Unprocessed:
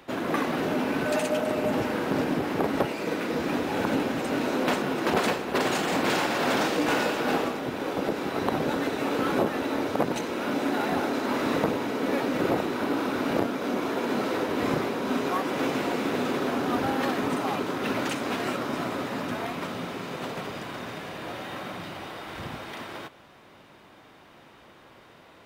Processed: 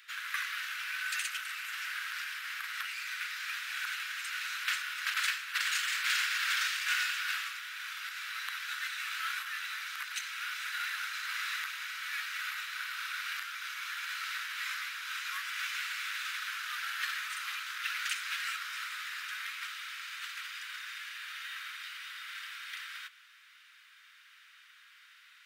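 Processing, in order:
Butterworth high-pass 1,400 Hz 48 dB per octave

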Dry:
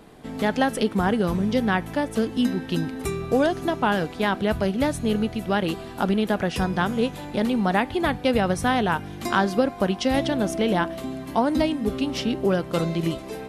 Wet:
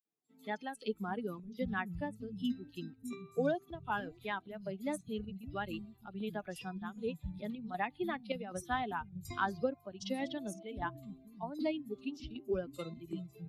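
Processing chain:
spectral dynamics exaggerated over time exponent 2
square-wave tremolo 1.3 Hz, depth 60%, duty 75%
three-band delay without the direct sound highs, mids, lows 50/660 ms, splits 190/4,800 Hz
level −8.5 dB

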